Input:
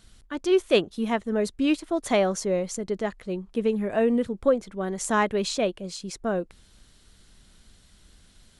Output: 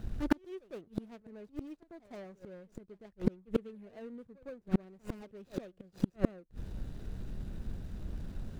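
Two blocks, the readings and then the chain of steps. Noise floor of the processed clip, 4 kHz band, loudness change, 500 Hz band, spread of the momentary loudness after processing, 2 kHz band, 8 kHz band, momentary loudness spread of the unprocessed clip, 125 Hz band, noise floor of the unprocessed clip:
-68 dBFS, -23.0 dB, -14.0 dB, -18.0 dB, 16 LU, -18.5 dB, under -25 dB, 9 LU, -2.5 dB, -57 dBFS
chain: median filter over 41 samples; bell 120 Hz +3.5 dB 0.78 oct; pre-echo 0.11 s -18 dB; flipped gate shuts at -30 dBFS, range -39 dB; gain +15.5 dB

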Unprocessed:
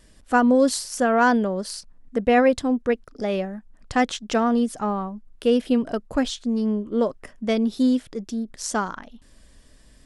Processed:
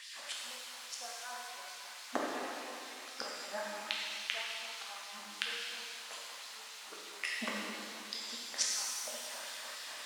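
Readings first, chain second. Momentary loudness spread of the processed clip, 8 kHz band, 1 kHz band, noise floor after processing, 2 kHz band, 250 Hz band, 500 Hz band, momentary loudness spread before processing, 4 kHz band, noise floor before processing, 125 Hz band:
9 LU, -4.5 dB, -19.5 dB, -49 dBFS, -11.5 dB, -29.5 dB, -24.5 dB, 13 LU, -3.0 dB, -53 dBFS, n/a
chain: flipped gate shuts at -21 dBFS, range -40 dB; in parallel at -9 dB: requantised 8-bit, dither triangular; on the sum: LFO high-pass sine 3.6 Hz 720–4400 Hz; air absorption 69 m; shimmer reverb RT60 2.2 s, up +7 st, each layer -8 dB, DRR -4 dB; gain +5.5 dB

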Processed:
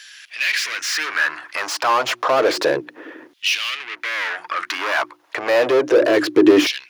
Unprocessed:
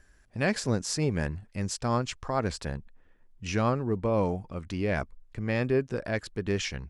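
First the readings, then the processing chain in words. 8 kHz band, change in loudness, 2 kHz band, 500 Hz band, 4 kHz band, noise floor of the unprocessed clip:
+8.5 dB, +11.0 dB, +16.0 dB, +12.0 dB, +16.0 dB, -60 dBFS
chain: notches 60/120/180/240/300/360 Hz; overdrive pedal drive 35 dB, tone 3100 Hz, clips at -12 dBFS; in parallel at -1.5 dB: compressor, threshold -30 dBFS, peak gain reduction 12.5 dB; on the sum: thirty-one-band EQ 125 Hz +11 dB, 200 Hz -11 dB, 315 Hz +12 dB, 800 Hz -5 dB, 8000 Hz -8 dB; LFO high-pass saw down 0.3 Hz 260–3500 Hz; gain -1 dB

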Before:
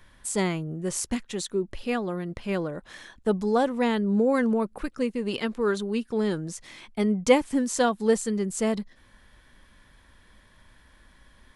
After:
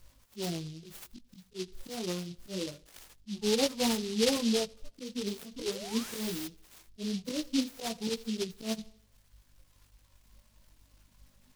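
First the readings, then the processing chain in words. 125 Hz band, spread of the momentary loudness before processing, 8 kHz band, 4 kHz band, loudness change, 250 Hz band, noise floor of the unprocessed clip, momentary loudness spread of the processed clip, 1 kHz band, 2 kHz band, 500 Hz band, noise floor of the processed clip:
-9.0 dB, 11 LU, -4.5 dB, +2.5 dB, -7.0 dB, -8.0 dB, -58 dBFS, 19 LU, -13.0 dB, -10.0 dB, -9.5 dB, -66 dBFS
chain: median-filter separation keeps harmonic; hum 50 Hz, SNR 32 dB; thinning echo 83 ms, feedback 54%, high-pass 170 Hz, level -15.5 dB; reverb removal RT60 1.8 s; high shelf 7000 Hz +10 dB; auto swell 0.149 s; chorus 0.24 Hz, delay 17.5 ms, depth 4.9 ms; air absorption 51 m; painted sound rise, 5.56–6.48, 250–6100 Hz -43 dBFS; noise-modulated delay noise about 4000 Hz, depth 0.18 ms

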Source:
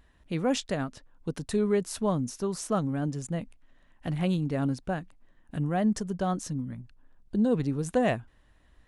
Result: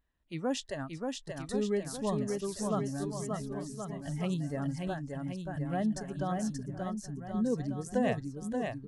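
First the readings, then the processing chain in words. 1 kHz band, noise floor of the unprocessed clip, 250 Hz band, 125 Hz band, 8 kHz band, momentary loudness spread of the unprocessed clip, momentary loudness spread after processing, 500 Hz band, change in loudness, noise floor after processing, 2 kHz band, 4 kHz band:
-4.0 dB, -62 dBFS, -4.5 dB, -4.5 dB, -3.5 dB, 11 LU, 7 LU, -4.0 dB, -5.0 dB, -49 dBFS, -4.0 dB, -4.0 dB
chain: spectral noise reduction 13 dB; on a send: bouncing-ball echo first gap 0.58 s, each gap 0.85×, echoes 5; on the sum: gain -5.5 dB

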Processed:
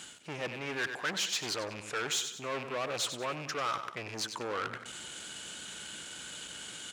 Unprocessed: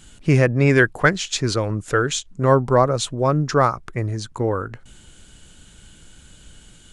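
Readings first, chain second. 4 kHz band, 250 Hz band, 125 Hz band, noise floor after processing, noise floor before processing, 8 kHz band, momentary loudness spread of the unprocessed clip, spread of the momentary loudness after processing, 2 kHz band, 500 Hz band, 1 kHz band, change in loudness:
-4.5 dB, -21.5 dB, -28.0 dB, -48 dBFS, -48 dBFS, -6.0 dB, 11 LU, 10 LU, -13.0 dB, -18.5 dB, -14.5 dB, -16.0 dB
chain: rattling part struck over -23 dBFS, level -23 dBFS; reverse; compressor 6:1, threshold -31 dBFS, peak gain reduction 19.5 dB; reverse; hard clip -30 dBFS, distortion -12 dB; on a send: feedback echo 95 ms, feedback 40%, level -12 dB; on the sum: sample leveller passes 2; weighting filter A

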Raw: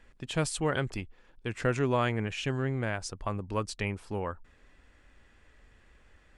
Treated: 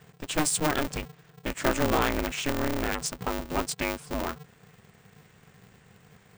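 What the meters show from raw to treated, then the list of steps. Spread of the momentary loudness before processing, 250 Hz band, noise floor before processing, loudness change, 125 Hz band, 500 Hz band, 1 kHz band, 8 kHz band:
12 LU, +3.5 dB, -62 dBFS, +3.0 dB, -4.0 dB, +1.5 dB, +4.5 dB, +10.0 dB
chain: bell 7900 Hz +8.5 dB 0.88 oct; vibrato 9.2 Hz 23 cents; polarity switched at an audio rate 150 Hz; gain +2.5 dB

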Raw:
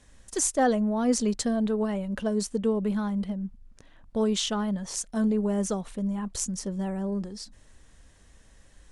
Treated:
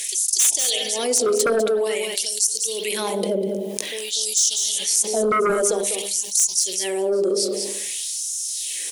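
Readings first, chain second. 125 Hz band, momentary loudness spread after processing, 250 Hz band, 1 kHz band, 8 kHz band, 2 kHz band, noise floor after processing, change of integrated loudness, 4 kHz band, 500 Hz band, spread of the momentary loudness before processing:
n/a, 7 LU, -5.5 dB, +5.0 dB, +15.5 dB, +9.0 dB, -30 dBFS, +7.5 dB, +13.5 dB, +8.5 dB, 9 LU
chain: EQ curve 160 Hz 0 dB, 240 Hz +4 dB, 380 Hz +15 dB, 1400 Hz -27 dB, 2200 Hz -6 dB, 3600 Hz -4 dB, 7800 Hz -2 dB, 12000 Hz +5 dB; pre-echo 0.24 s -19.5 dB; spring tank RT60 1.1 s, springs 60 ms, chirp 40 ms, DRR 10.5 dB; LFO high-pass sine 0.51 Hz 500–6000 Hz; sine folder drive 11 dB, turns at -7 dBFS; de-hum 67.43 Hz, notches 15; spectral gain 0.39–0.83, 240–3800 Hz +11 dB; high shelf 4600 Hz +12 dB; on a send: echo 0.199 s -16 dB; on the sum: fast leveller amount 70%; gain -14.5 dB

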